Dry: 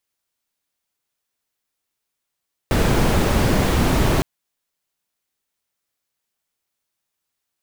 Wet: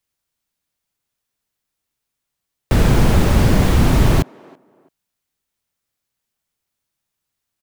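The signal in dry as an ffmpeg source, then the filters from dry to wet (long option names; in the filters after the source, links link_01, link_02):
-f lavfi -i "anoisesrc=color=brown:amplitude=0.7:duration=1.51:sample_rate=44100:seed=1"
-filter_complex "[0:a]acrossover=split=210[link_01][link_02];[link_01]acontrast=88[link_03];[link_02]asplit=2[link_04][link_05];[link_05]adelay=332,lowpass=frequency=1100:poles=1,volume=-20dB,asplit=2[link_06][link_07];[link_07]adelay=332,lowpass=frequency=1100:poles=1,volume=0.31[link_08];[link_04][link_06][link_08]amix=inputs=3:normalize=0[link_09];[link_03][link_09]amix=inputs=2:normalize=0"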